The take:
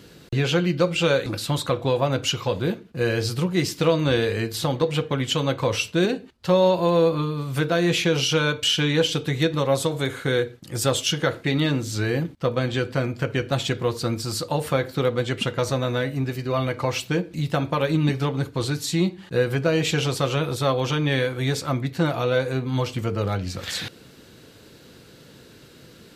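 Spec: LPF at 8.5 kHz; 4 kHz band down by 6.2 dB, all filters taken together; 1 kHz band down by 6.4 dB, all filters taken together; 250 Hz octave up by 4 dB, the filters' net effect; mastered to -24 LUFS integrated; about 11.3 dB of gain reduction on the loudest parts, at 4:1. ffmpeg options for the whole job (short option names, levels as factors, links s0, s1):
-af "lowpass=8500,equalizer=f=250:t=o:g=6.5,equalizer=f=1000:t=o:g=-8.5,equalizer=f=4000:t=o:g=-8,acompressor=threshold=0.0398:ratio=4,volume=2.37"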